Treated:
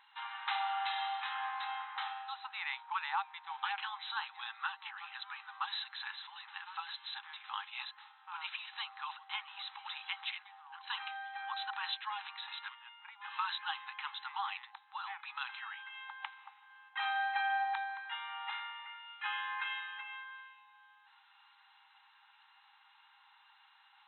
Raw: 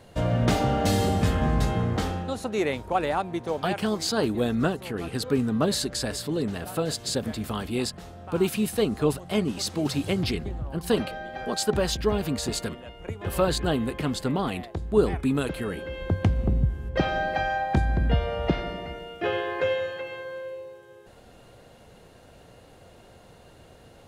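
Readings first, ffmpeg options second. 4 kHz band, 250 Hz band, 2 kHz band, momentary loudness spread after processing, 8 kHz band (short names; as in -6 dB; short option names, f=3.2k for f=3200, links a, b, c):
-7.5 dB, under -40 dB, -4.5 dB, 11 LU, under -40 dB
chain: -af "afftfilt=real='re*between(b*sr/4096,780,4100)':imag='im*between(b*sr/4096,780,4100)':win_size=4096:overlap=0.75,volume=-4.5dB"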